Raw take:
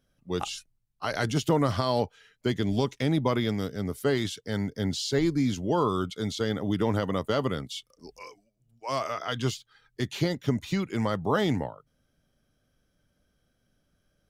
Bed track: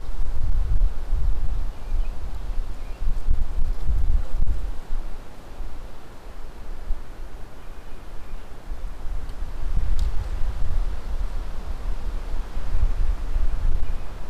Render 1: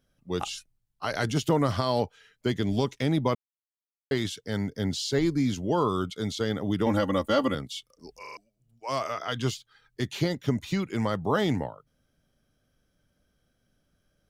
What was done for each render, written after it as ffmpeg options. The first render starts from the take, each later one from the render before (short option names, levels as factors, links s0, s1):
-filter_complex "[0:a]asettb=1/sr,asplit=3[s0][s1][s2];[s0]atrim=end=6.864[s3];[s1]atrim=start=6.86:end=7.55,asetpts=PTS-STARTPTS,afade=t=in:d=0.004:c=qsin,afade=t=out:st=0.686:d=0.004:c=qsin,aecho=1:1:3.6:0.96,atrim=end_sample=30429[s4];[s2]atrim=start=7.546[s5];[s3][s4]acrossfade=d=0.004:c1=hsin:c2=qsin[s6];[s6][s5]acrossfade=d=0.004:c1=qsin:c2=hsin,asplit=7[s7][s8][s9][s10][s11][s12][s13];[s7]atrim=end=3.35,asetpts=PTS-STARTPTS,afade=t=out:st=3.346:d=0.004:c=hsin[s14];[s8]atrim=start=3.35:end=4.11,asetpts=PTS-STARTPTS,volume=0[s15];[s9]atrim=start=4.11:end=8.252,asetpts=PTS-STARTPTS,afade=t=in:d=0.004:c=hsin[s16];[s10]atrim=start=8.208:end=8.252[s17];[s11]atrim=start=8.208:end=8.252[s18];[s12]atrim=start=8.208:end=8.252[s19];[s13]atrim=start=8.368[s20];[s14][s15][s16]concat=n=3:v=0:a=1[s21];[s21][s17]acrossfade=d=0.004:c1=hsin:c2=hsin[s22];[s22][s18]acrossfade=d=0.004:c1=hsin:c2=hsin[s23];[s23][s19]acrossfade=d=0.004:c1=hsin:c2=hsin[s24];[s24][s20]acrossfade=d=0.004:c1=hsin:c2=hsin"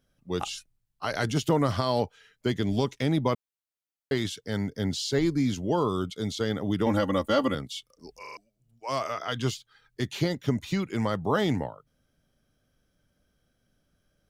-filter_complex "[0:a]asettb=1/sr,asplit=3[s0][s1][s2];[s0]atrim=end=5.764[s3];[s1]atrim=start=5.76:end=6.38,asetpts=PTS-STARTPTS,afade=t=in:d=0.004:c=qsin,afade=t=out:st=0.616:d=0.004:c=qsin,equalizer=f=1400:t=o:w=1.2:g=-4[s4];[s2]atrim=start=6.376[s5];[s3][s4]acrossfade=d=0.004:c1=hsin:c2=qsin[s6];[s6][s5]acrossfade=d=0.004:c1=qsin:c2=hsin"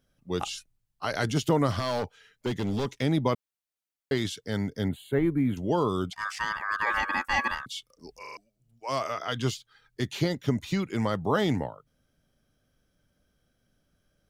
-filter_complex "[0:a]asettb=1/sr,asplit=3[s0][s1][s2];[s0]atrim=end=1.794[s3];[s1]atrim=start=1.79:end=2.86,asetpts=PTS-STARTPTS,afade=t=in:d=0.004:c=qsin,afade=t=out:st=1.066:d=0.004:c=qsin,asoftclip=type=hard:threshold=0.0631[s4];[s2]atrim=start=2.856[s5];[s3][s4]acrossfade=d=0.004:c1=hsin:c2=qsin[s6];[s6][s5]acrossfade=d=0.004:c1=qsin:c2=hsin,asettb=1/sr,asplit=3[s7][s8][s9];[s7]atrim=end=4.884[s10];[s8]atrim=start=4.88:end=5.57,asetpts=PTS-STARTPTS,afade=t=in:d=0.004:c=qsin,afade=t=out:st=0.686:d=0.004:c=qsin,asuperstop=centerf=5400:order=4:qfactor=0.6[s11];[s9]atrim=start=5.566[s12];[s10][s11]acrossfade=d=0.004:c1=hsin:c2=qsin[s13];[s13][s12]acrossfade=d=0.004:c1=qsin:c2=hsin,asettb=1/sr,asplit=3[s14][s15][s16];[s14]atrim=end=6.134[s17];[s15]atrim=start=6.13:end=7.66,asetpts=PTS-STARTPTS,afade=t=in:d=0.004:c=qsin,afade=t=out:st=1.526:d=0.004:c=qsin,aeval=exprs='val(0)*sin(2*PI*1400*n/s)':c=same[s18];[s16]atrim=start=7.656[s19];[s17][s18]acrossfade=d=0.004:c1=hsin:c2=qsin[s20];[s20][s19]acrossfade=d=0.004:c1=qsin:c2=hsin"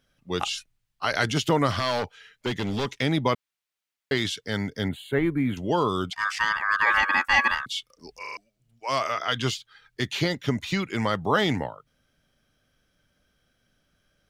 -af "equalizer=f=2400:t=o:w=2.7:g=8"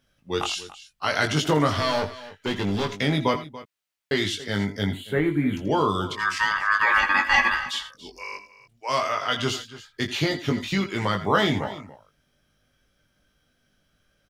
-filter_complex "[0:a]asplit=2[s0][s1];[s1]adelay=20,volume=0.596[s2];[s0][s2]amix=inputs=2:normalize=0,aecho=1:1:82|85|285:0.188|0.141|0.141"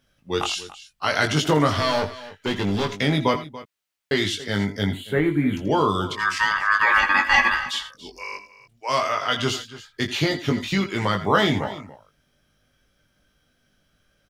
-af "volume=1.26"